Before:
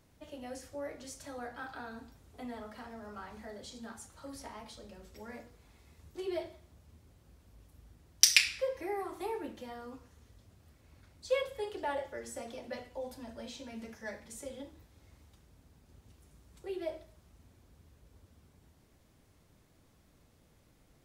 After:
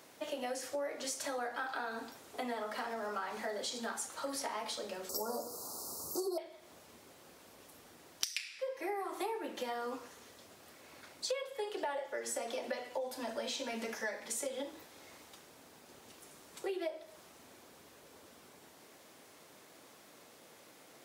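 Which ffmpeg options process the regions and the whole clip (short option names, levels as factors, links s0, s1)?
-filter_complex "[0:a]asettb=1/sr,asplit=3[s0][s1][s2];[s0]atrim=end=5.094[s3];[s1]atrim=start=5.09:end=6.38,asetpts=PTS-STARTPTS,afade=t=in:d=0.004:c=qsin,afade=t=out:st=1.286:d=0.004:c=qsin,aemphasis=mode=production:type=50kf,acontrast=64,asuperstop=centerf=2400:order=12:qfactor=0.79[s4];[s2]atrim=start=6.376[s5];[s3][s4]acrossfade=d=0.004:c1=hsin:c2=qsin[s6];[s6][s5]acrossfade=d=0.004:c1=qsin:c2=hsin,highpass=400,acompressor=threshold=0.00398:ratio=10,volume=4.47"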